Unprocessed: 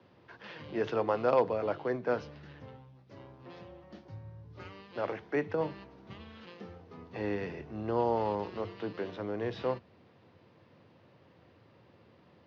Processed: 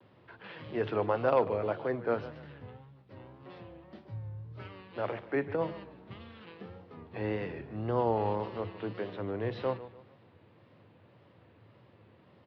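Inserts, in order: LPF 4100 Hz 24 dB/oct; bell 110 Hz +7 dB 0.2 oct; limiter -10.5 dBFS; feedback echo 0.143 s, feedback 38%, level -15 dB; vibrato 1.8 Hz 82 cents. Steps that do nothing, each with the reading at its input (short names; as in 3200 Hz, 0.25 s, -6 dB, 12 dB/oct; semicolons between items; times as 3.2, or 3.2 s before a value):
limiter -10.5 dBFS: input peak -14.5 dBFS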